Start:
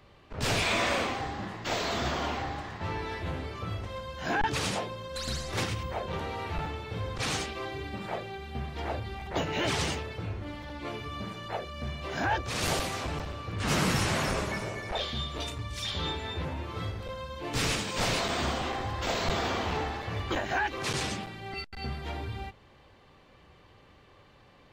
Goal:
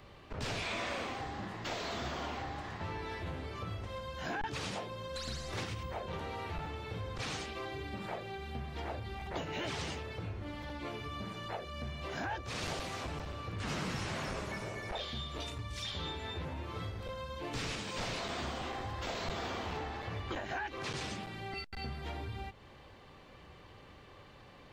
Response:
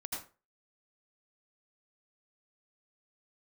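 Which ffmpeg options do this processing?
-filter_complex "[0:a]acrossover=split=7300[link_01][link_02];[link_02]acompressor=threshold=-53dB:ratio=4:attack=1:release=60[link_03];[link_01][link_03]amix=inputs=2:normalize=0,asettb=1/sr,asplit=3[link_04][link_05][link_06];[link_04]atrim=end=19.794[link_07];[link_05]atrim=start=19.79:end=20.96,asetpts=PTS-STARTPTS,afade=type=in:duration=0.004:curve=qsin,afade=type=out:start_time=1.166:duration=0.004:curve=qsin,highshelf=frequency=7700:gain=-5.5[link_08];[link_06]atrim=start=20.956[link_09];[link_07][link_08]acrossfade=duration=0.004:curve1=hsin:curve2=qsin[link_10];[link_10][link_09]acrossfade=duration=0.004:curve1=qsin:curve2=hsin,acompressor=threshold=-43dB:ratio=2.5,volume=2dB"

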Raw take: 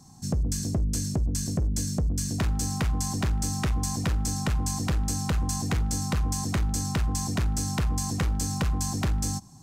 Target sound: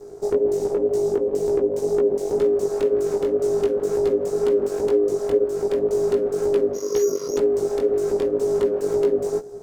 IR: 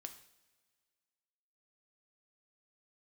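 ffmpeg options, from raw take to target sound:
-filter_complex "[0:a]asplit=2[link_01][link_02];[1:a]atrim=start_sample=2205,highshelf=frequency=8600:gain=9[link_03];[link_02][link_03]afir=irnorm=-1:irlink=0,volume=-9dB[link_04];[link_01][link_04]amix=inputs=2:normalize=0,asettb=1/sr,asplit=3[link_05][link_06][link_07];[link_05]atrim=end=6.734[link_08];[link_06]atrim=start=6.73:end=7.37,asetpts=PTS-STARTPTS,afade=type=in:duration=0.004:curve=qsin,afade=type=out:start_time=0.636:duration=0.004:curve=qsin,lowpass=frequency=2700:width_type=q:width=0.5098,lowpass=frequency=2700:width_type=q:width=0.6013,lowpass=frequency=2700:width_type=q:width=0.9,lowpass=frequency=2700:width_type=q:width=2.563,afreqshift=-3200[link_09];[link_07]atrim=start=7.366[link_10];[link_08][link_09]acrossfade=duration=0.004:curve1=hsin:curve2=qsin[link_11];[link_11][link_10]acrossfade=duration=0.004:curve1=qsin:curve2=hsin,asplit=2[link_12][link_13];[link_13]adynamicsmooth=sensitivity=2.5:basefreq=1000,volume=3dB[link_14];[link_12][link_14]amix=inputs=2:normalize=0,asettb=1/sr,asplit=3[link_15][link_16][link_17];[link_15]atrim=end=4.754[link_18];[link_16]atrim=start=4.75:end=5.44,asetpts=PTS-STARTPTS,afade=type=in:duration=0.004:curve=qsin,afade=type=out:start_time=0.686:duration=0.004:curve=qsin,asubboost=boost=12:cutoff=76[link_19];[link_17]atrim=start=5.436[link_20];[link_18][link_19]acrossfade=duration=0.004:curve1=hsin:curve2=qsin[link_21];[link_21][link_20]acrossfade=duration=0.004:curve1=qsin:curve2=hsin,aeval=exprs='abs(val(0))':channel_layout=same,lowshelf=frequency=190:gain=10,acompressor=threshold=-16dB:ratio=4,aeval=exprs='val(0)*sin(2*PI*410*n/s)':channel_layout=same,flanger=delay=16.5:depth=4.8:speed=2,volume=1.5dB"

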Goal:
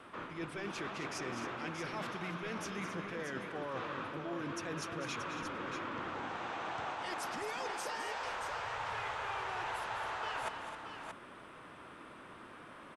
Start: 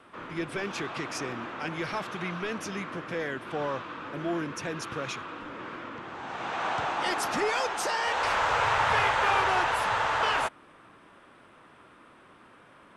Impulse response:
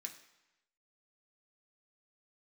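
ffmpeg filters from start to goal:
-af "areverse,acompressor=threshold=-39dB:ratio=10,areverse,aecho=1:1:209|265|629:0.316|0.282|0.422,volume=1dB"

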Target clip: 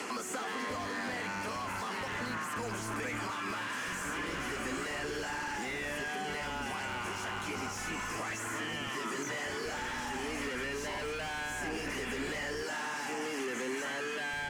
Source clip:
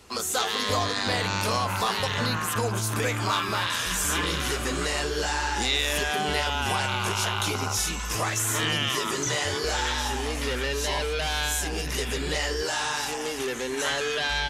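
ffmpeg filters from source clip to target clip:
ffmpeg -i in.wav -filter_complex "[0:a]acrossover=split=120|240|2200[link_01][link_02][link_03][link_04];[link_01]acompressor=threshold=-35dB:ratio=4[link_05];[link_02]acompressor=threshold=-52dB:ratio=4[link_06];[link_03]acompressor=threshold=-41dB:ratio=4[link_07];[link_04]acompressor=threshold=-43dB:ratio=4[link_08];[link_05][link_06][link_07][link_08]amix=inputs=4:normalize=0,asplit=2[link_09][link_10];[link_10]highpass=frequency=720:poles=1,volume=26dB,asoftclip=type=tanh:threshold=-22.5dB[link_11];[link_09][link_11]amix=inputs=2:normalize=0,lowpass=frequency=7100:poles=1,volume=-6dB,aemphasis=mode=reproduction:type=cd,bandreject=frequency=3700:width=11,acompressor=threshold=-41dB:ratio=2.5,equalizer=frequency=250:width_type=o:width=1:gain=9,equalizer=frequency=2000:width_type=o:width=1:gain=4,equalizer=frequency=4000:width_type=o:width=1:gain=-5,equalizer=frequency=8000:width_type=o:width=1:gain=5,acrossover=split=110|1700[link_12][link_13][link_14];[link_12]acrusher=bits=5:dc=4:mix=0:aa=0.000001[link_15];[link_15][link_13][link_14]amix=inputs=3:normalize=0" out.wav

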